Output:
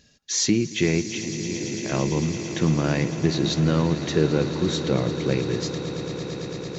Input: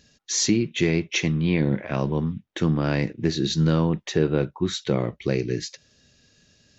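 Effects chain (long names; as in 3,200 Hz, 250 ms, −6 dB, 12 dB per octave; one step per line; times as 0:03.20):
0:01.03–0:01.86: downward compressor 3 to 1, threshold −36 dBFS, peak gain reduction 14 dB
echo that builds up and dies away 112 ms, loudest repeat 8, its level −15.5 dB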